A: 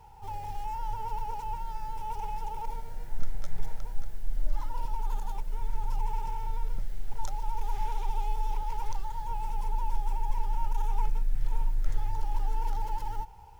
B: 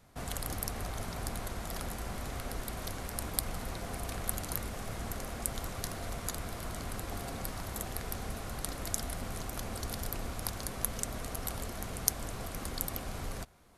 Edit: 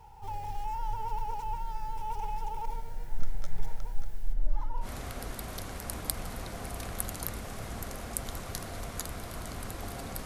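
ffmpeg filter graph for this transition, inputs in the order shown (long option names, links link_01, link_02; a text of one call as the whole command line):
ffmpeg -i cue0.wav -i cue1.wav -filter_complex "[0:a]asplit=3[link_01][link_02][link_03];[link_01]afade=type=out:start_time=4.32:duration=0.02[link_04];[link_02]highshelf=frequency=2300:gain=-11,afade=type=in:start_time=4.32:duration=0.02,afade=type=out:start_time=4.88:duration=0.02[link_05];[link_03]afade=type=in:start_time=4.88:duration=0.02[link_06];[link_04][link_05][link_06]amix=inputs=3:normalize=0,apad=whole_dur=10.25,atrim=end=10.25,atrim=end=4.88,asetpts=PTS-STARTPTS[link_07];[1:a]atrim=start=2.09:end=7.54,asetpts=PTS-STARTPTS[link_08];[link_07][link_08]acrossfade=duration=0.08:curve1=tri:curve2=tri" out.wav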